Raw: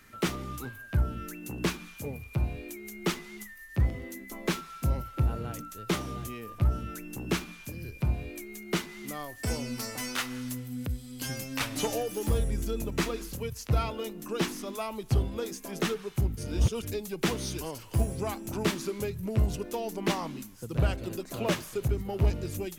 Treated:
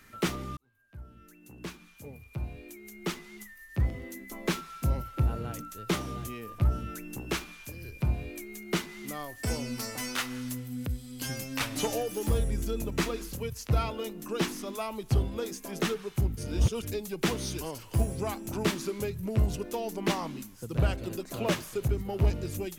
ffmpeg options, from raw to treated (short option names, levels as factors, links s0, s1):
-filter_complex "[0:a]asettb=1/sr,asplit=3[s0][s1][s2];[s0]atrim=end=7.204[s3];[s1]atrim=start=7.2:end=7.92,asetpts=PTS-STARTPTS,afade=t=in:d=0.004:c=qsin,afade=t=out:st=0.716:d=0.004:c=qsin,equalizer=f=190:t=o:w=1.3:g=-8[s4];[s2]atrim=start=7.916[s5];[s3][s4]acrossfade=d=0.004:c1=hsin:c2=qsin[s6];[s6][s5]acrossfade=d=0.004:c1=qsin:c2=hsin,asplit=2[s7][s8];[s7]atrim=end=0.57,asetpts=PTS-STARTPTS,afade=t=out:st=0.566:d=0.004:c=hsin[s9];[s8]atrim=start=0.57,asetpts=PTS-STARTPTS,afade=t=in:d=3.95[s10];[s9][s10]concat=n=2:v=0:a=1"